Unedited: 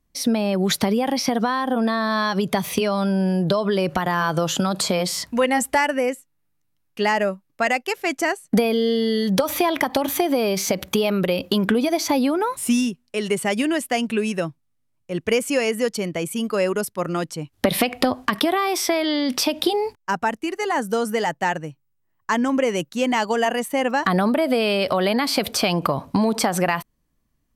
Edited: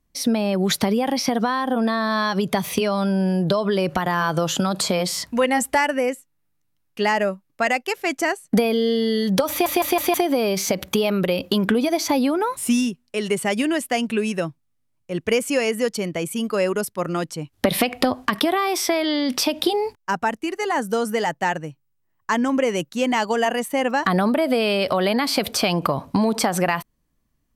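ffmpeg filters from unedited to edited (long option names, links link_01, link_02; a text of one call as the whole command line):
ffmpeg -i in.wav -filter_complex "[0:a]asplit=5[link_01][link_02][link_03][link_04][link_05];[link_01]atrim=end=9.662[link_06];[link_02]atrim=start=9.498:end=9.662[link_07];[link_03]atrim=start=9.498:end=9.662[link_08];[link_04]atrim=start=9.498:end=9.662[link_09];[link_05]atrim=start=10.138[link_10];[link_06][link_07]acrossfade=duration=0.004:curve1=hsin:curve2=hsin[link_11];[link_11][link_08]acrossfade=duration=0.004:curve1=hsin:curve2=hsin[link_12];[link_12][link_09]acrossfade=duration=0.004:curve1=hsin:curve2=hsin[link_13];[link_13][link_10]acrossfade=duration=0.004:curve1=hsin:curve2=hsin" out.wav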